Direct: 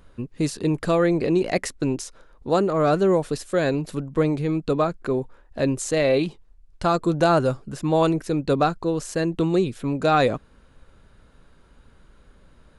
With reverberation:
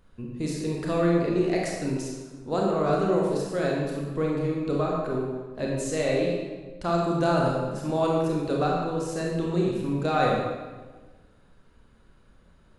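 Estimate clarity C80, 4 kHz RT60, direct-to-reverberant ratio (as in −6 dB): 2.0 dB, 1.0 s, −2.5 dB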